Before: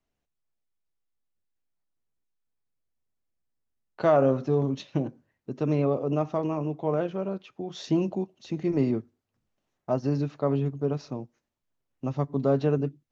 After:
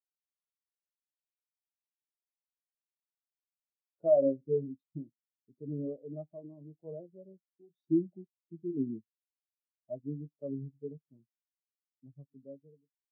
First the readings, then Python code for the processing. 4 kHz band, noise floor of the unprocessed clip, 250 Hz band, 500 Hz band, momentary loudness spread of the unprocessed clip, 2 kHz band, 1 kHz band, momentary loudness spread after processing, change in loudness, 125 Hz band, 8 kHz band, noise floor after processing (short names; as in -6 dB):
under -35 dB, -83 dBFS, -9.5 dB, -7.5 dB, 13 LU, under -40 dB, -19.5 dB, 24 LU, -7.0 dB, -16.0 dB, n/a, under -85 dBFS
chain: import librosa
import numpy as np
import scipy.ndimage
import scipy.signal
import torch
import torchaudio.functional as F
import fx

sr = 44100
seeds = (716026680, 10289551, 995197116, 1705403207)

y = fx.fade_out_tail(x, sr, length_s=1.3)
y = fx.peak_eq(y, sr, hz=1800.0, db=-7.0, octaves=2.0)
y = fx.vibrato(y, sr, rate_hz=1.2, depth_cents=41.0)
y = fx.doubler(y, sr, ms=18.0, db=-13.0)
y = fx.spectral_expand(y, sr, expansion=2.5)
y = F.gain(torch.from_numpy(y), -3.5).numpy()